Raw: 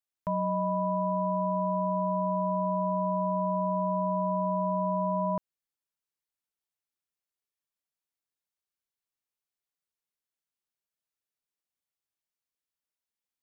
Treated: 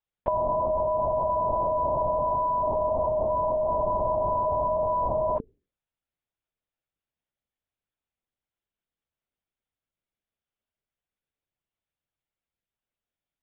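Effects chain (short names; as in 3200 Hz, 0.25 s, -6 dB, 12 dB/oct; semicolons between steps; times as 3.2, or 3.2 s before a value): resonant high-pass 360 Hz, resonance Q 3.4; notches 60/120/180/240/300/360/420/480 Hz; LPC vocoder at 8 kHz whisper; gain +2.5 dB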